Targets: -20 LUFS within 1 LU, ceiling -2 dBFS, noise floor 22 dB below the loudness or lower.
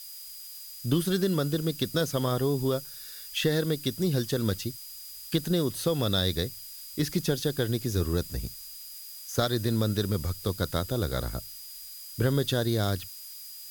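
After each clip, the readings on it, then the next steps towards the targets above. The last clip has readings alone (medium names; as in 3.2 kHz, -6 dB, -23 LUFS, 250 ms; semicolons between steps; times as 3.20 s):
steady tone 4.9 kHz; tone level -47 dBFS; noise floor -44 dBFS; noise floor target -51 dBFS; loudness -29.0 LUFS; peak level -11.5 dBFS; loudness target -20.0 LUFS
-> band-stop 4.9 kHz, Q 30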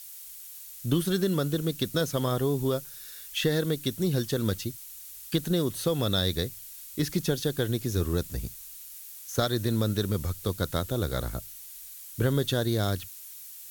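steady tone not found; noise floor -45 dBFS; noise floor target -51 dBFS
-> noise reduction 6 dB, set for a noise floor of -45 dBFS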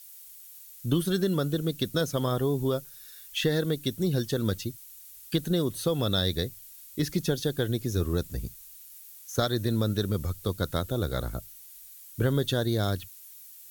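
noise floor -49 dBFS; noise floor target -51 dBFS
-> noise reduction 6 dB, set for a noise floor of -49 dBFS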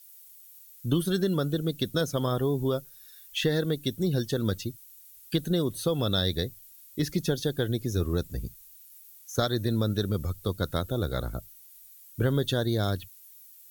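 noise floor -52 dBFS; loudness -29.0 LUFS; peak level -12.5 dBFS; loudness target -20.0 LUFS
-> trim +9 dB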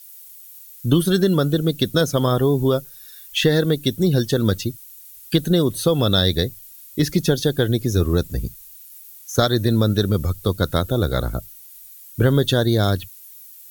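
loudness -20.0 LUFS; peak level -3.5 dBFS; noise floor -43 dBFS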